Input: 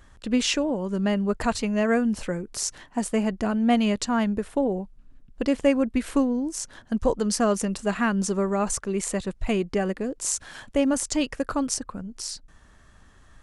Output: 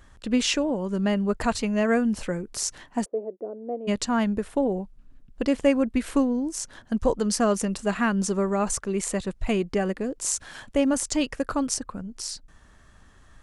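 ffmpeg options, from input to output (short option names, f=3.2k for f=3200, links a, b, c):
-filter_complex "[0:a]asplit=3[a][b][c];[a]afade=t=out:st=3.04:d=0.02[d];[b]asuperpass=centerf=450:order=4:qfactor=2,afade=t=in:st=3.04:d=0.02,afade=t=out:st=3.87:d=0.02[e];[c]afade=t=in:st=3.87:d=0.02[f];[d][e][f]amix=inputs=3:normalize=0"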